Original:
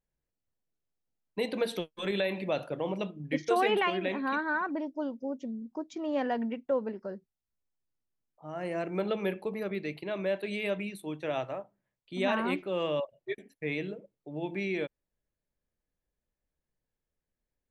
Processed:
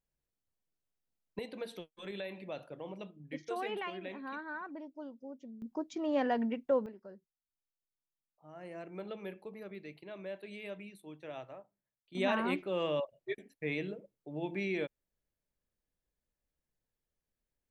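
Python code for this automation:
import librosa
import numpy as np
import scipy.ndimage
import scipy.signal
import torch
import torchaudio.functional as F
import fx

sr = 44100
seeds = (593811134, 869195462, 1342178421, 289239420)

y = fx.gain(x, sr, db=fx.steps((0.0, -3.0), (1.39, -11.5), (5.62, -0.5), (6.86, -12.0), (12.15, -2.5)))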